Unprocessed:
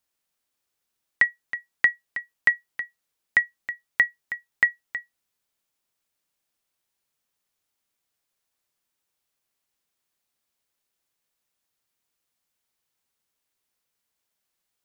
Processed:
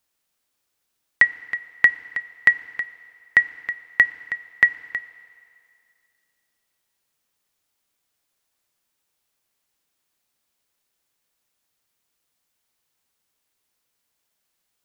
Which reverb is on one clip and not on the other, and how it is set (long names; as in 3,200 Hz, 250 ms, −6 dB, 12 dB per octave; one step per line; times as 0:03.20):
feedback delay network reverb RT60 2.5 s, low-frequency decay 0.75×, high-frequency decay 0.9×, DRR 14.5 dB
level +4.5 dB